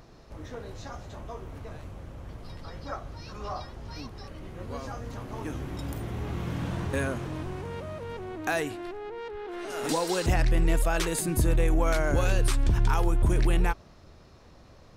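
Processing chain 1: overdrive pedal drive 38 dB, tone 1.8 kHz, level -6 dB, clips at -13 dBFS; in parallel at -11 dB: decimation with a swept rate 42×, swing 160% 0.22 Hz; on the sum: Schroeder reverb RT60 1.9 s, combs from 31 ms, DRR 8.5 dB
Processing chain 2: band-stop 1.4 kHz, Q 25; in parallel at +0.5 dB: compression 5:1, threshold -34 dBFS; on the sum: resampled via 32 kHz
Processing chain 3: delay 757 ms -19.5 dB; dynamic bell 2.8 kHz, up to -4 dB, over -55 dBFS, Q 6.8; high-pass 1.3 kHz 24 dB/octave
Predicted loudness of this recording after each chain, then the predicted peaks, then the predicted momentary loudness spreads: -20.5 LUFS, -28.0 LUFS, -38.5 LUFS; -8.0 dBFS, -11.5 dBFS, -17.5 dBFS; 6 LU, 13 LU, 21 LU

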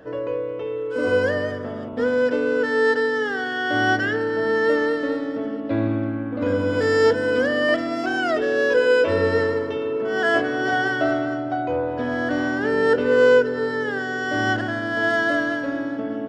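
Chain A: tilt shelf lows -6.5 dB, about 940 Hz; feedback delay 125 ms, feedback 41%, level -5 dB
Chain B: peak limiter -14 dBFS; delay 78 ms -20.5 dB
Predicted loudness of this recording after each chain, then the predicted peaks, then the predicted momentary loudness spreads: -20.0 LUFS, -23.0 LUFS; -5.0 dBFS, -13.0 dBFS; 12 LU, 5 LU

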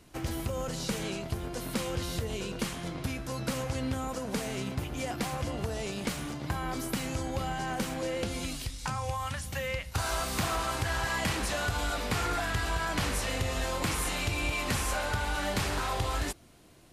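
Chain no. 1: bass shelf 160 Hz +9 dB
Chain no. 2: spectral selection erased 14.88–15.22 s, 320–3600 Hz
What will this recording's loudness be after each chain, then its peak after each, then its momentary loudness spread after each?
-30.0 LUFS, -32.5 LUFS; -15.0 dBFS, -21.0 dBFS; 5 LU, 5 LU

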